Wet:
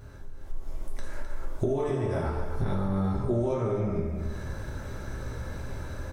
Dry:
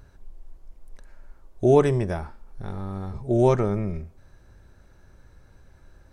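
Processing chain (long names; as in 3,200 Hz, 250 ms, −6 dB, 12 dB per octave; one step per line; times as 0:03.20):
0:01.64–0:02.24: tuned comb filter 110 Hz, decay 1.7 s, mix 60%
dense smooth reverb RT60 0.7 s, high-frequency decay 0.75×, DRR −6.5 dB
downward compressor 20 to 1, threshold −35 dBFS, peak gain reduction 30 dB
single-tap delay 259 ms −9.5 dB
automatic gain control gain up to 10.5 dB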